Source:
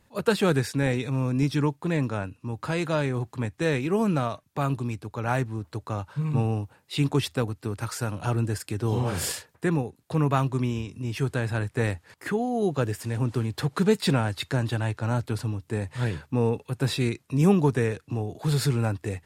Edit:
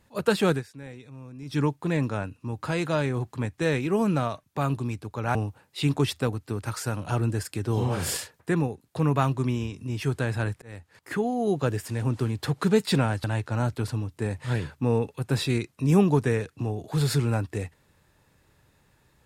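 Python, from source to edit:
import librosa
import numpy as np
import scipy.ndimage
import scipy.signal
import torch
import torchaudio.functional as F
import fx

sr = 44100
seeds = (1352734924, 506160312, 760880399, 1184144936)

y = fx.edit(x, sr, fx.fade_down_up(start_s=0.5, length_s=1.09, db=-17.0, fade_s=0.14),
    fx.cut(start_s=5.35, length_s=1.15),
    fx.fade_in_span(start_s=11.77, length_s=0.57),
    fx.cut(start_s=14.39, length_s=0.36), tone=tone)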